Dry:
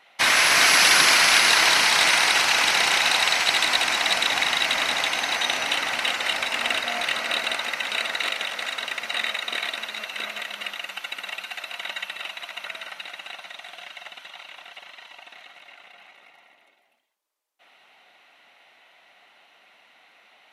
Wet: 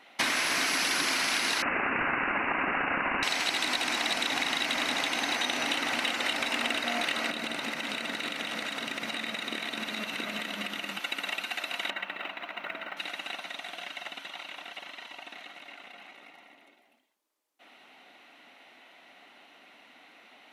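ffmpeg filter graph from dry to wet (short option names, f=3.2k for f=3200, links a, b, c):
-filter_complex "[0:a]asettb=1/sr,asplit=3[a][b][c];[a]atrim=end=1.624[d];[b]atrim=start=1.62:end=3.23,asetpts=PTS-STARTPTS,afade=t=in:d=0.004:c=qsin,afade=t=out:st=1.606:d=0.004:c=qsin,highpass=f=920:w=0.5412,highpass=f=920:w=1.3066,lowpass=f=3.1k:t=q:w=0.5098,lowpass=f=3.1k:t=q:w=0.6013,lowpass=f=3.1k:t=q:w=0.9,lowpass=f=3.1k:t=q:w=2.563,afreqshift=-3600[e];[c]atrim=start=3.226[f];[d][e]acrossfade=d=0.004:c1=hsin:c2=qsin[g];[g][f]acrossfade=d=0.004:c1=qsin:c2=hsin,asettb=1/sr,asplit=3[h][i][j];[h]atrim=end=7.304[k];[i]atrim=start=7.3:end=11,asetpts=PTS-STARTPTS,afade=t=in:d=0.004:c=qsin,afade=t=out:st=3.696:d=0.004:c=qsin,equalizer=f=160:w=1.1:g=11,acompressor=threshold=-31dB:ratio=6:attack=3.2:release=140:knee=1:detection=peak,aecho=1:1:251:0.335,atrim=end_sample=163170[l];[j]atrim=start=10.996[m];[k][l]acrossfade=d=0.004:c1=hsin:c2=qsin[n];[n][m]acrossfade=d=0.004:c1=qsin:c2=hsin,asettb=1/sr,asplit=3[o][p][q];[o]atrim=end=11.904[r];[p]atrim=start=11.9:end=12.97,asetpts=PTS-STARTPTS,afade=t=in:d=0.004:c=qsin,afade=t=out:st=1.066:d=0.004:c=qsin,lowpass=2.1k,acrusher=bits=8:mode=log:mix=0:aa=0.000001[s];[q]atrim=start=12.966[t];[r][s]acrossfade=d=0.004:c1=hsin:c2=qsin[u];[u][t]acrossfade=d=0.004:c1=qsin:c2=hsin,equalizer=f=270:w=1.5:g=12.5,acompressor=threshold=-26dB:ratio=6"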